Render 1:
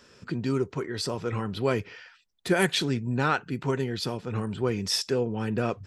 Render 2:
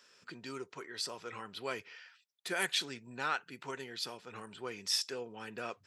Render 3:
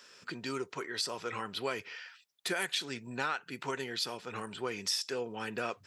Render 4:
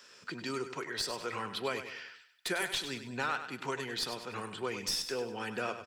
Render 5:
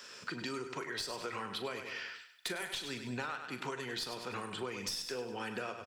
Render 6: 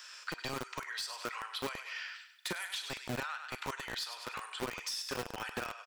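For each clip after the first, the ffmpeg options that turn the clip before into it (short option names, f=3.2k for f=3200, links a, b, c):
-af "highpass=f=1.4k:p=1,volume=-4.5dB"
-af "acompressor=threshold=-37dB:ratio=6,volume=7dB"
-filter_complex "[0:a]acrossover=split=180|1200[a][b][c];[c]aeval=exprs='clip(val(0),-1,0.0282)':c=same[d];[a][b][d]amix=inputs=3:normalize=0,aecho=1:1:99|198|297|396:0.316|0.126|0.0506|0.0202"
-filter_complex "[0:a]acompressor=threshold=-43dB:ratio=5,asplit=2[a][b];[b]adelay=40,volume=-12dB[c];[a][c]amix=inputs=2:normalize=0,volume=5.5dB"
-filter_complex "[0:a]acrossover=split=770|2000[a][b][c];[a]acrusher=bits=5:mix=0:aa=0.000001[d];[c]asoftclip=type=hard:threshold=-33.5dB[e];[d][b][e]amix=inputs=3:normalize=0,volume=1dB"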